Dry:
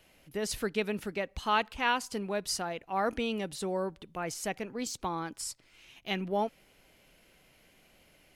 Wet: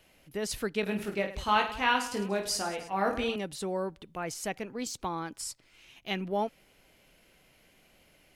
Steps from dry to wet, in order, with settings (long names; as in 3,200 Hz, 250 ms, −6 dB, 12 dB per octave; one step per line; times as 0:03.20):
0:00.81–0:03.36: reverse bouncing-ball delay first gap 20 ms, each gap 1.6×, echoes 5